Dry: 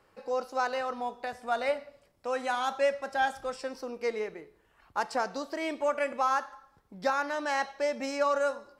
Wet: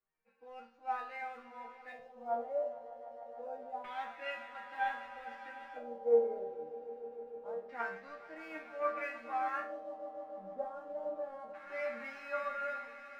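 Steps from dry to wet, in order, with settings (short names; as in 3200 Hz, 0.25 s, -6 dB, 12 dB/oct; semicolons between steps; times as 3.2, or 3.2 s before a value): on a send: swelling echo 0.1 s, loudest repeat 5, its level -14 dB; on the sum: LFO low-pass square 0.39 Hz 600–2200 Hz; time stretch by phase-locked vocoder 1.5×; in parallel at -8 dB: crossover distortion -42.5 dBFS; on the sum: resonator bank D#3 major, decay 0.43 s; three-band expander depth 40%; gain +2.5 dB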